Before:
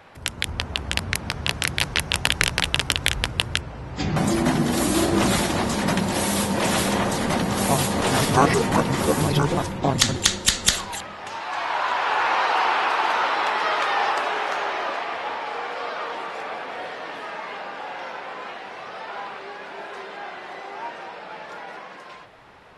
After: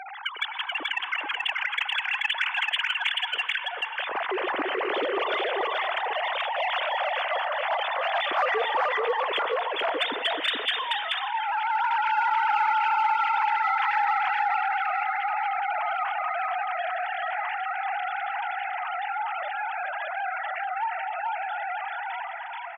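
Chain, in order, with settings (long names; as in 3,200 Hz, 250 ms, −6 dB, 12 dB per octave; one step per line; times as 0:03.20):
three sine waves on the formant tracks
0:20.31–0:20.84: comb filter 2.2 ms, depth 70%
in parallel at −6 dB: soft clipping −17 dBFS, distortion −12 dB
on the sum: high-pass filter 890 Hz 6 dB per octave
single-tap delay 432 ms −3.5 dB
on a send at −17 dB: convolution reverb RT60 1.7 s, pre-delay 87 ms
on the sum: envelope flattener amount 50%
level −9 dB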